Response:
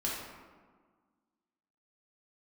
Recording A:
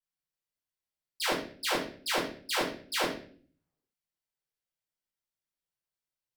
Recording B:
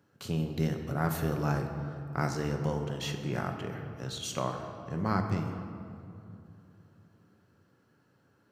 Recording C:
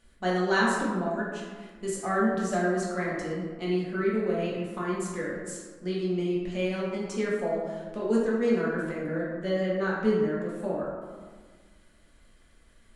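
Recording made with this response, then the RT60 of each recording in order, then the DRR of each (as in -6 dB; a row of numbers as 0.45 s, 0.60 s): C; 0.45 s, 2.9 s, 1.6 s; -10.5 dB, 4.0 dB, -5.5 dB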